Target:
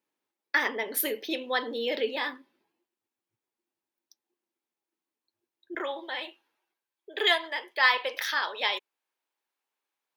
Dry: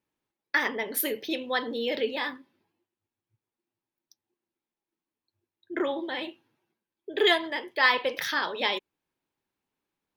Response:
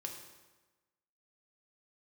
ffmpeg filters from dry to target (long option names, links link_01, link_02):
-af "asetnsamples=nb_out_samples=441:pad=0,asendcmd='5.75 highpass f 620',highpass=270"